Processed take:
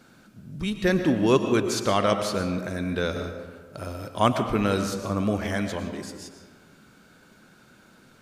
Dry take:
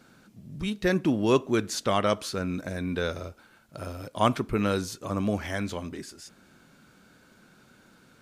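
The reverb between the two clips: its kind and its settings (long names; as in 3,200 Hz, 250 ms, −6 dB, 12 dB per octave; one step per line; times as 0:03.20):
comb and all-pass reverb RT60 1.5 s, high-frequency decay 0.5×, pre-delay 75 ms, DRR 7 dB
level +2 dB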